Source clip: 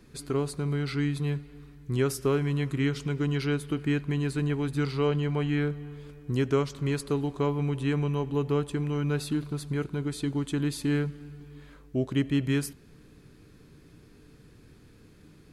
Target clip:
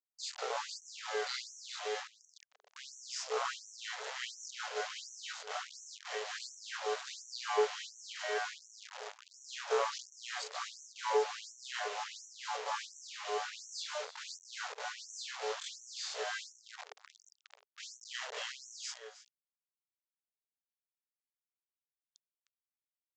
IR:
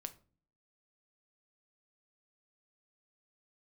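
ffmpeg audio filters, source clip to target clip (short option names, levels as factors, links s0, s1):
-filter_complex "[0:a]afftfilt=real='re':imag='-im':win_size=2048:overlap=0.75,equalizer=f=2400:t=o:w=0.36:g=-13,bandreject=f=50:t=h:w=6,bandreject=f=100:t=h:w=6,asplit=2[s0][s1];[s1]acompressor=threshold=0.00891:ratio=10,volume=1[s2];[s0][s2]amix=inputs=2:normalize=0,aeval=exprs='0.141*(cos(1*acos(clip(val(0)/0.141,-1,1)))-cos(1*PI/2))+0.00398*(cos(2*acos(clip(val(0)/0.141,-1,1)))-cos(2*PI/2))+0.01*(cos(3*acos(clip(val(0)/0.141,-1,1)))-cos(3*PI/2))+0.0112*(cos(6*acos(clip(val(0)/0.141,-1,1)))-cos(6*PI/2))':c=same,atempo=0.67,acrusher=bits=6:mix=0:aa=0.000001,asplit=2[s3][s4];[s4]aecho=0:1:307:0.158[s5];[s3][s5]amix=inputs=2:normalize=0,aresample=16000,aresample=44100,afftfilt=real='re*gte(b*sr/1024,390*pow(5700/390,0.5+0.5*sin(2*PI*1.4*pts/sr)))':imag='im*gte(b*sr/1024,390*pow(5700/390,0.5+0.5*sin(2*PI*1.4*pts/sr)))':win_size=1024:overlap=0.75,volume=1.5"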